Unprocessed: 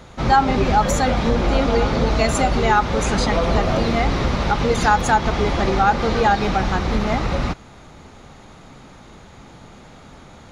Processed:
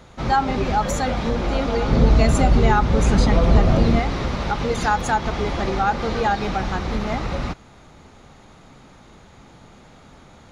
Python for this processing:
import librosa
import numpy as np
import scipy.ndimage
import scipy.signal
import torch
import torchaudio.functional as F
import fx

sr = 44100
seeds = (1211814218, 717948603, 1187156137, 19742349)

y = fx.low_shelf(x, sr, hz=300.0, db=11.0, at=(1.88, 4.0))
y = y * librosa.db_to_amplitude(-4.0)